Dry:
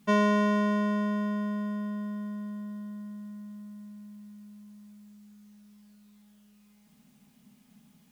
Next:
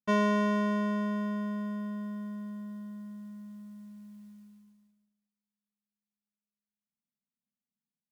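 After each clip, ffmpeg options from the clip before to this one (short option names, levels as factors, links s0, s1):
-af "agate=range=0.0141:threshold=0.00355:ratio=16:detection=peak,volume=0.75"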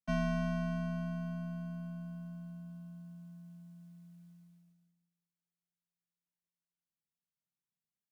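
-af "afreqshift=-380,volume=0.473"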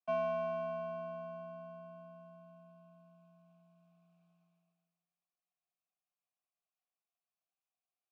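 -filter_complex "[0:a]asplit=2[s0][s1];[s1]asoftclip=type=tanh:threshold=0.0141,volume=0.266[s2];[s0][s2]amix=inputs=2:normalize=0,asplit=3[s3][s4][s5];[s3]bandpass=f=730:t=q:w=8,volume=1[s6];[s4]bandpass=f=1090:t=q:w=8,volume=0.501[s7];[s5]bandpass=f=2440:t=q:w=8,volume=0.355[s8];[s6][s7][s8]amix=inputs=3:normalize=0,volume=2.99"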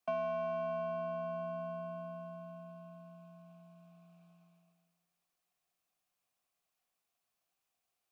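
-af "acompressor=threshold=0.00501:ratio=3,volume=2.82"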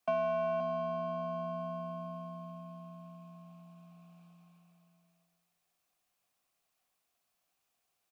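-af "aecho=1:1:526:0.398,volume=1.58"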